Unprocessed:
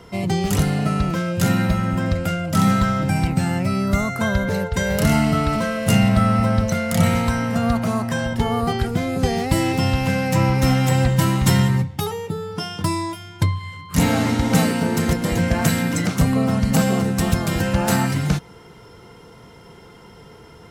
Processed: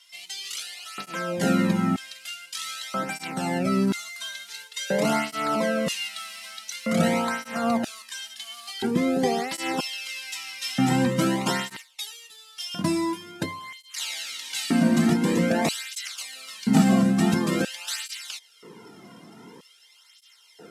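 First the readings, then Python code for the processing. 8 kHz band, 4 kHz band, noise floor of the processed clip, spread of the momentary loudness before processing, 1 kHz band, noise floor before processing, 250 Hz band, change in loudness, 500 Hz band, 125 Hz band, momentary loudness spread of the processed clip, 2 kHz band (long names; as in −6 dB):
−4.0 dB, −1.5 dB, −56 dBFS, 6 LU, −6.0 dB, −45 dBFS, −5.0 dB, −6.0 dB, −5.0 dB, −12.5 dB, 15 LU, −5.5 dB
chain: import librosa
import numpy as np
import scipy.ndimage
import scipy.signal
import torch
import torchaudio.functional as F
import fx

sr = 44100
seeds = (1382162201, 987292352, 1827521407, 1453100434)

y = fx.cvsd(x, sr, bps=64000)
y = fx.filter_lfo_highpass(y, sr, shape='square', hz=0.51, low_hz=220.0, high_hz=3300.0, q=1.5)
y = fx.flanger_cancel(y, sr, hz=0.47, depth_ms=2.4)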